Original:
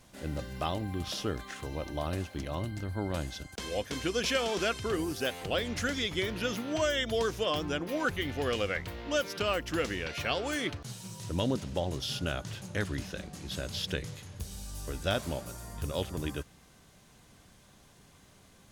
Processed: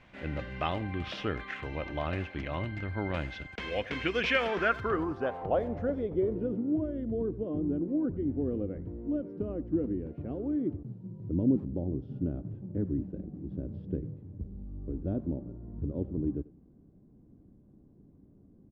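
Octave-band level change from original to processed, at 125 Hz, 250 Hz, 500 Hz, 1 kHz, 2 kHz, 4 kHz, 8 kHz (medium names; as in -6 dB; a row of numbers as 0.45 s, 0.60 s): +1.0 dB, +5.0 dB, -0.5 dB, -1.0 dB, -1.5 dB, -9.0 dB, under -20 dB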